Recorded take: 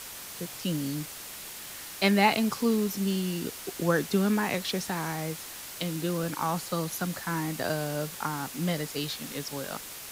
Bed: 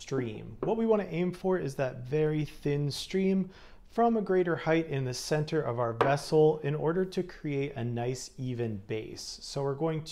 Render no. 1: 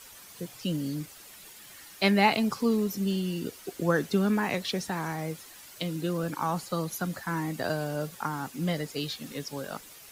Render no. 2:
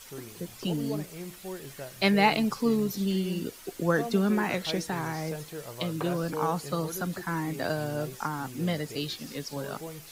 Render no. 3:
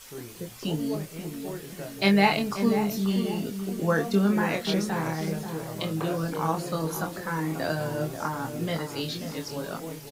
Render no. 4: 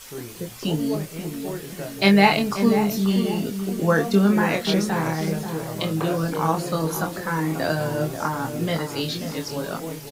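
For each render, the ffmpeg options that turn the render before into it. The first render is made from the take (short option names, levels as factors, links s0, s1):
-af "afftdn=nr=10:nf=-42"
-filter_complex "[1:a]volume=0.299[s0];[0:a][s0]amix=inputs=2:normalize=0"
-filter_complex "[0:a]asplit=2[s0][s1];[s1]adelay=25,volume=0.562[s2];[s0][s2]amix=inputs=2:normalize=0,asplit=2[s3][s4];[s4]adelay=536,lowpass=f=1100:p=1,volume=0.422,asplit=2[s5][s6];[s6]adelay=536,lowpass=f=1100:p=1,volume=0.49,asplit=2[s7][s8];[s8]adelay=536,lowpass=f=1100:p=1,volume=0.49,asplit=2[s9][s10];[s10]adelay=536,lowpass=f=1100:p=1,volume=0.49,asplit=2[s11][s12];[s12]adelay=536,lowpass=f=1100:p=1,volume=0.49,asplit=2[s13][s14];[s14]adelay=536,lowpass=f=1100:p=1,volume=0.49[s15];[s5][s7][s9][s11][s13][s15]amix=inputs=6:normalize=0[s16];[s3][s16]amix=inputs=2:normalize=0"
-af "volume=1.78"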